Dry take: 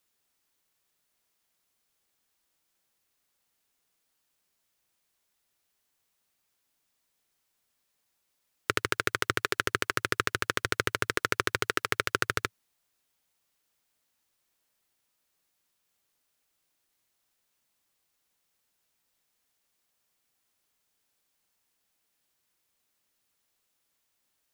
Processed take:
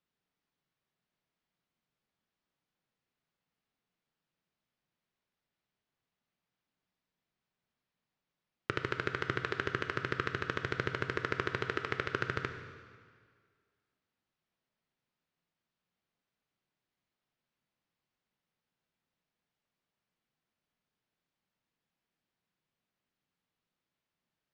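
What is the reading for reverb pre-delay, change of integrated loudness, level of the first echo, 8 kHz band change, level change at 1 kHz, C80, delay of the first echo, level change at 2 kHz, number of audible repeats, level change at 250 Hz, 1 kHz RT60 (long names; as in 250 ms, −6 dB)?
6 ms, −6.0 dB, no echo audible, −21.0 dB, −6.0 dB, 8.5 dB, no echo audible, −6.5 dB, no echo audible, −2.0 dB, 1.9 s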